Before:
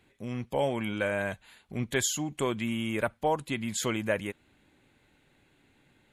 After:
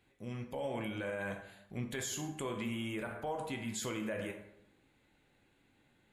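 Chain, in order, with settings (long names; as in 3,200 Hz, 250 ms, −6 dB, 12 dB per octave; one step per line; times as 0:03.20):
dense smooth reverb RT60 0.76 s, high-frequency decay 0.6×, DRR 3.5 dB
brickwall limiter −22.5 dBFS, peak gain reduction 10 dB
level −7 dB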